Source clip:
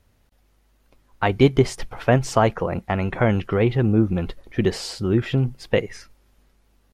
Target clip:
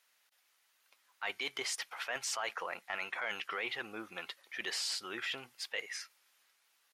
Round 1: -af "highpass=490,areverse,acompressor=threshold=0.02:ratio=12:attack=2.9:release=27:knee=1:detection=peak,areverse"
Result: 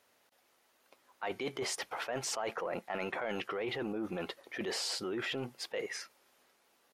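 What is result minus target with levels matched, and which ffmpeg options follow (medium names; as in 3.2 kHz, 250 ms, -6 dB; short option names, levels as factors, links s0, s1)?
500 Hz band +8.0 dB
-af "highpass=1500,areverse,acompressor=threshold=0.02:ratio=12:attack=2.9:release=27:knee=1:detection=peak,areverse"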